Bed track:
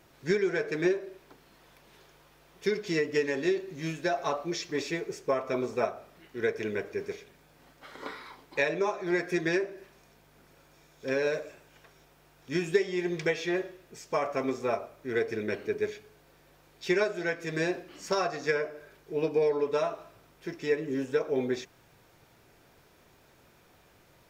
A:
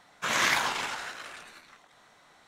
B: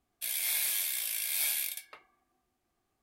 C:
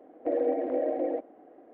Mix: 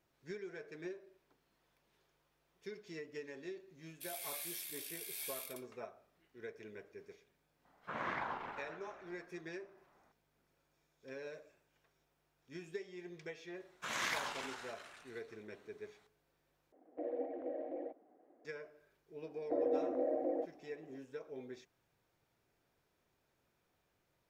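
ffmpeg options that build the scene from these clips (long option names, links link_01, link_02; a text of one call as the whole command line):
ffmpeg -i bed.wav -i cue0.wav -i cue1.wav -i cue2.wav -filter_complex "[1:a]asplit=2[link_01][link_02];[3:a]asplit=2[link_03][link_04];[0:a]volume=-19dB[link_05];[2:a]asoftclip=type=tanh:threshold=-20.5dB[link_06];[link_01]lowpass=1200[link_07];[link_03]flanger=delay=0.8:depth=9.4:regen=60:speed=1.7:shape=triangular[link_08];[link_04]lowpass=1700[link_09];[link_05]asplit=2[link_10][link_11];[link_10]atrim=end=16.724[link_12];[link_08]atrim=end=1.73,asetpts=PTS-STARTPTS,volume=-9.5dB[link_13];[link_11]atrim=start=18.446[link_14];[link_06]atrim=end=3.02,asetpts=PTS-STARTPTS,volume=-13dB,afade=type=in:duration=0.004:curve=hsin,afade=type=out:start_time=3.016:duration=0.004:curve=hsin,adelay=3790[link_15];[link_07]atrim=end=2.47,asetpts=PTS-STARTPTS,volume=-8.5dB,afade=type=in:duration=0.004:curve=hsin,afade=type=out:start_time=2.466:duration=0.004:curve=hsin,adelay=7650[link_16];[link_02]atrim=end=2.47,asetpts=PTS-STARTPTS,volume=-12.5dB,afade=type=in:duration=0.004:curve=hsin,afade=type=out:start_time=2.466:duration=0.004:curve=hsin,adelay=13600[link_17];[link_09]atrim=end=1.73,asetpts=PTS-STARTPTS,volume=-7dB,afade=type=in:duration=0.004:curve=hsin,afade=type=out:start_time=1.726:duration=0.004:curve=hsin,adelay=19250[link_18];[link_12][link_13]acrossfade=duration=0.004:curve1=hsin:curve2=hsin[link_19];[link_19][link_14]acrossfade=duration=0.004:curve1=hsin:curve2=hsin[link_20];[link_20][link_15][link_16][link_17][link_18]amix=inputs=5:normalize=0" out.wav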